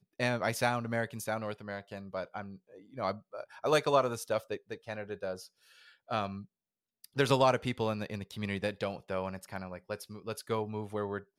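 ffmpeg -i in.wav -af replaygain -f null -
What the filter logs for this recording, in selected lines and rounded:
track_gain = +13.7 dB
track_peak = 0.167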